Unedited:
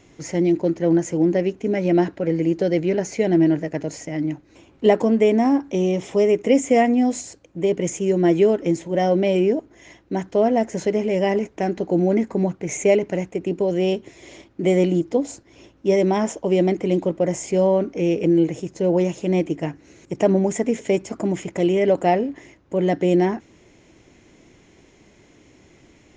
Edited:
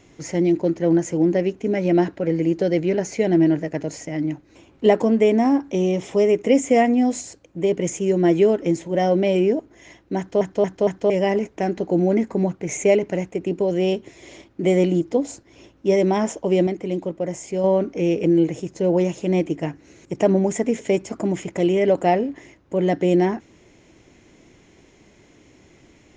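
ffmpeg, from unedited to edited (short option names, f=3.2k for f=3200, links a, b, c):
-filter_complex "[0:a]asplit=7[a][b][c][d][e][f][g];[a]atrim=end=10.412[h];[b]atrim=start=10.178:end=10.412[i];[c]atrim=start=10.178:end=10.412[j];[d]atrim=start=10.178:end=10.412[k];[e]atrim=start=11.098:end=16.672[l];[f]atrim=start=16.668:end=17.642,asetpts=PTS-STARTPTS,volume=-5dB[m];[g]atrim=start=17.638[n];[h][i]acrossfade=d=0.004:c1=hsin:c2=hsin[o];[o][j]acrossfade=d=0.004:c1=hsin:c2=hsin[p];[p][k]acrossfade=d=0.004:c1=hsin:c2=hsin[q];[q][l]acrossfade=d=0.004:c1=hsin:c2=hsin[r];[r][m]acrossfade=d=0.004:c1=hsin:c2=hsin[s];[s][n]acrossfade=d=0.004:c1=hsin:c2=hsin"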